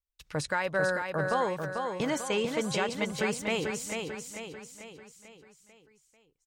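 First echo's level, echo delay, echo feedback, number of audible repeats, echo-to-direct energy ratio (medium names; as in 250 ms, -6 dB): -5.0 dB, 443 ms, 50%, 5, -4.0 dB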